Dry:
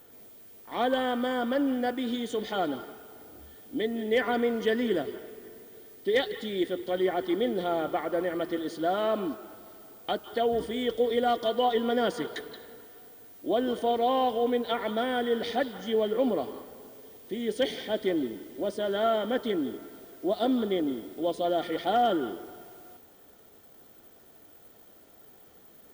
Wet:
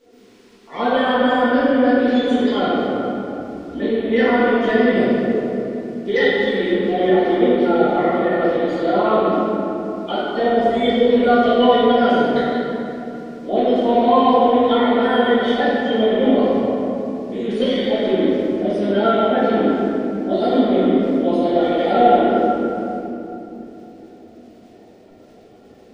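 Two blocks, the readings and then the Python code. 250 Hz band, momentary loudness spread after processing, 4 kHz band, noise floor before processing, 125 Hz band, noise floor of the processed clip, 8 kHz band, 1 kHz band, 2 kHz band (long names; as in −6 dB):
+13.5 dB, 11 LU, +8.5 dB, −55 dBFS, +14.5 dB, −46 dBFS, can't be measured, +12.0 dB, +12.5 dB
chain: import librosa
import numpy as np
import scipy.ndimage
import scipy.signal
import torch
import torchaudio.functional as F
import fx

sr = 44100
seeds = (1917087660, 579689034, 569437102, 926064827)

y = fx.spec_quant(x, sr, step_db=30)
y = scipy.signal.sosfilt(scipy.signal.butter(2, 5600.0, 'lowpass', fs=sr, output='sos'), y)
y = fx.room_shoebox(y, sr, seeds[0], volume_m3=150.0, walls='hard', distance_m=1.6)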